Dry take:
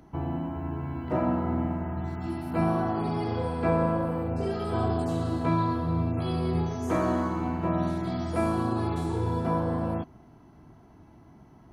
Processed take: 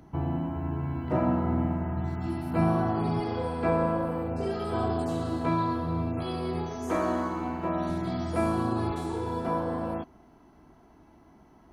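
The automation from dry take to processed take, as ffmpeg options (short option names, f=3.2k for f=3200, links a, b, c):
-af "asetnsamples=n=441:p=0,asendcmd='3.2 equalizer g -5.5;6.23 equalizer g -13;7.89 equalizer g -1.5;8.91 equalizer g -11.5',equalizer=f=120:t=o:w=1.1:g=3.5"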